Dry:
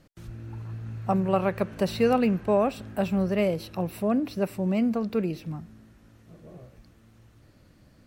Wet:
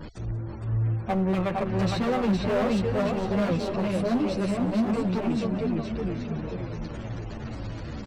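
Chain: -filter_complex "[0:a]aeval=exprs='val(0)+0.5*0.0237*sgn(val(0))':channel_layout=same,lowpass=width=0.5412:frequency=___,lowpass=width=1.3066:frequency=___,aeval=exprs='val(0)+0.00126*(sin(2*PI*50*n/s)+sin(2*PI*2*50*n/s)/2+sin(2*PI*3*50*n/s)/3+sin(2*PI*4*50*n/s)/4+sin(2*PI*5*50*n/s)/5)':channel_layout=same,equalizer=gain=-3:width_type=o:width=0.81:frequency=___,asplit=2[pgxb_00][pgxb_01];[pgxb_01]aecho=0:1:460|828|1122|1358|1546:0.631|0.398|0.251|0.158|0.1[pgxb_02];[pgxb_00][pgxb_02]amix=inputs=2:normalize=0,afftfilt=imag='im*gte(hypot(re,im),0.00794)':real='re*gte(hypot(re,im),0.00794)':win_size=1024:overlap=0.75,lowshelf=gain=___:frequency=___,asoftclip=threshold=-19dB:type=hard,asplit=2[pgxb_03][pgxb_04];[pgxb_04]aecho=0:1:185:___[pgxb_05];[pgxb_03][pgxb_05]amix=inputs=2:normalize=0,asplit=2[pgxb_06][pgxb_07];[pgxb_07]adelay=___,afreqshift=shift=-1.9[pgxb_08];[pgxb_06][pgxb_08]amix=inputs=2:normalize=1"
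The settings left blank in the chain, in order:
9200, 9200, 160, 6.5, 360, 0.1, 9.8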